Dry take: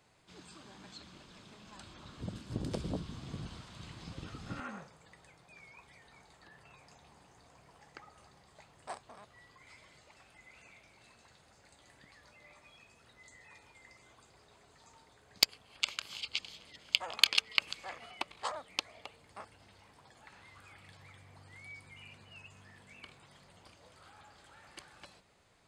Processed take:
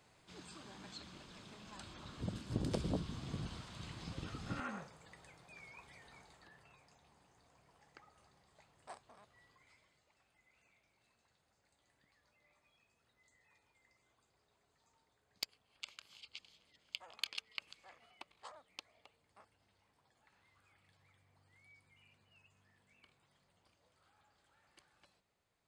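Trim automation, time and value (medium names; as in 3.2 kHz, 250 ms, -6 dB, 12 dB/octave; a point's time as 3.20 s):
6.13 s 0 dB
6.90 s -8.5 dB
9.51 s -8.5 dB
9.97 s -15.5 dB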